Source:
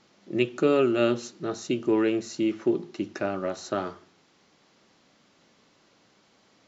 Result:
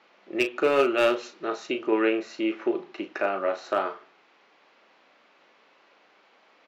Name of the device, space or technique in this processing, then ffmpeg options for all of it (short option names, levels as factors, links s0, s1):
megaphone: -filter_complex "[0:a]highpass=520,lowpass=2600,equalizer=f=2500:t=o:w=0.32:g=4,asoftclip=type=hard:threshold=0.1,asplit=2[s0][s1];[s1]adelay=36,volume=0.355[s2];[s0][s2]amix=inputs=2:normalize=0,asettb=1/sr,asplit=3[s3][s4][s5];[s3]atrim=end=0.834[s6];[s4]atrim=start=0.83:end=1.66,asetpts=PTS-STARTPTS,afade=t=in:d=0.004:c=qsin,afade=t=out:st=0.826:d=0.004:c=qsin,highshelf=f=4400:g=5[s7];[s5]atrim=start=1.656[s8];[s6][s7]acrossfade=d=0.004:c1=hsin:c2=qsin[s9];[s9][s8]acrossfade=d=0.004:c1=qsin:c2=hsin,volume=1.88"